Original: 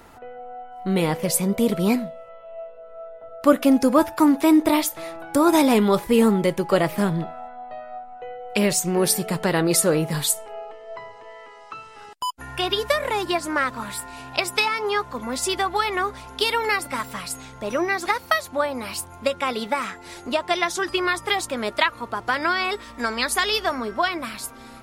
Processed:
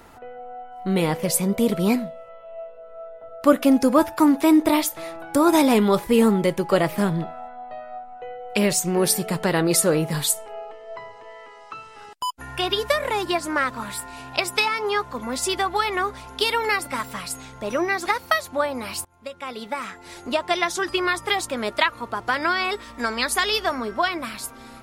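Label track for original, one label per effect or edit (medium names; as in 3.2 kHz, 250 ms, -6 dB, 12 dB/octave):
19.050000	20.330000	fade in, from -22 dB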